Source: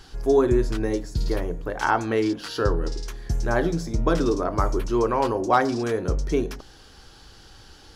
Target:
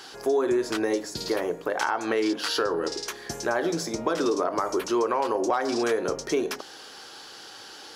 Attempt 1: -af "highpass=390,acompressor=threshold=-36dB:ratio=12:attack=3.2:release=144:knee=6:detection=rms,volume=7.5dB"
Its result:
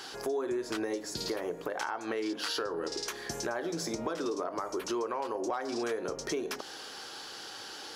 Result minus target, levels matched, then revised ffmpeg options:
compressor: peak gain reduction +9 dB
-af "highpass=390,acompressor=threshold=-26dB:ratio=12:attack=3.2:release=144:knee=6:detection=rms,volume=7.5dB"

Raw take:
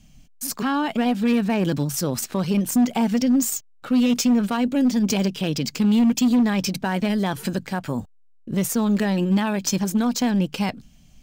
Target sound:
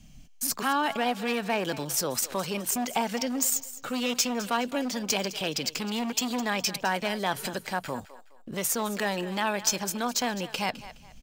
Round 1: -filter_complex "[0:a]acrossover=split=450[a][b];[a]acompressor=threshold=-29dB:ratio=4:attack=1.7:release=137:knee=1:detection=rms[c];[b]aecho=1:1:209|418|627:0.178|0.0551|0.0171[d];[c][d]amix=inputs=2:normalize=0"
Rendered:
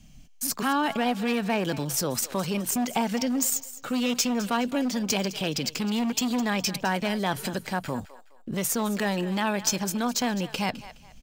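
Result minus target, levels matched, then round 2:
compressor: peak gain reduction -7 dB
-filter_complex "[0:a]acrossover=split=450[a][b];[a]acompressor=threshold=-38.5dB:ratio=4:attack=1.7:release=137:knee=1:detection=rms[c];[b]aecho=1:1:209|418|627:0.178|0.0551|0.0171[d];[c][d]amix=inputs=2:normalize=0"

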